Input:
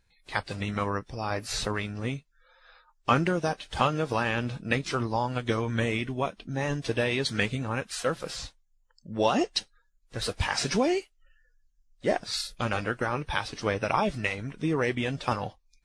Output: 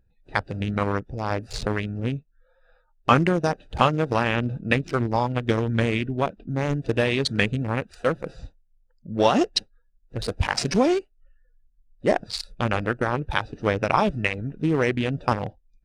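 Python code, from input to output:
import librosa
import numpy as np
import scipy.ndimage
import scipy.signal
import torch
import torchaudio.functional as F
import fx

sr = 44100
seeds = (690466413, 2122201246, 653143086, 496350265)

y = fx.wiener(x, sr, points=41)
y = F.gain(torch.from_numpy(y), 6.0).numpy()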